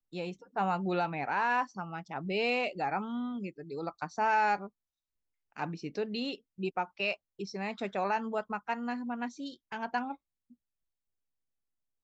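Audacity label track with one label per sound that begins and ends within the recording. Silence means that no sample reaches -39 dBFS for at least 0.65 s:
5.570000	10.140000	sound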